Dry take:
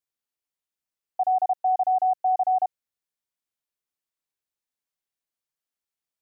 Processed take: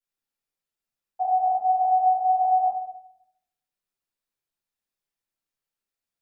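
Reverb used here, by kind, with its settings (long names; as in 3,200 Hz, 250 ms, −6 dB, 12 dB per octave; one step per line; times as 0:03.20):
rectangular room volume 170 cubic metres, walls mixed, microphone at 4.5 metres
level −12 dB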